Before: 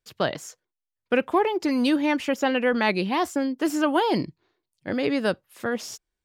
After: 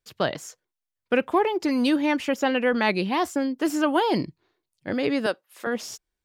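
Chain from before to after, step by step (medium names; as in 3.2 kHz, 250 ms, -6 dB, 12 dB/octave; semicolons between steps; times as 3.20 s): 5.26–5.67 s: high-pass 400 Hz 12 dB/octave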